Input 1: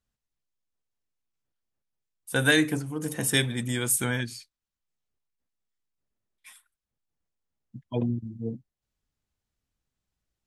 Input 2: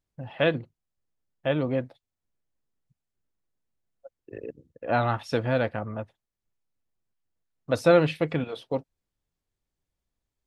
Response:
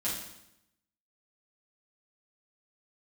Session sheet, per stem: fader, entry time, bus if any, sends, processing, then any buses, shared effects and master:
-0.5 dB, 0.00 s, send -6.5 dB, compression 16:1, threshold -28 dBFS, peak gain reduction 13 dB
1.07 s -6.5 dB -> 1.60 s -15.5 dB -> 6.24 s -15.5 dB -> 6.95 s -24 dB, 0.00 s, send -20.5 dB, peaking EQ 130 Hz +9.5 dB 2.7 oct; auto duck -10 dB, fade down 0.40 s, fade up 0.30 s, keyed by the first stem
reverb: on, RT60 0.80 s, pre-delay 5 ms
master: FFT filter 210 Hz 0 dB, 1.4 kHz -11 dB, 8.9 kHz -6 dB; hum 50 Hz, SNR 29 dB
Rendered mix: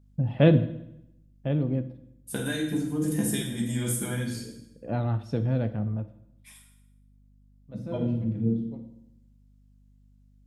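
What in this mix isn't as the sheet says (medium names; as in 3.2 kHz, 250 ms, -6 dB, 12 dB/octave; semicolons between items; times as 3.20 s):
stem 2 -6.5 dB -> +3.5 dB; reverb return +7.5 dB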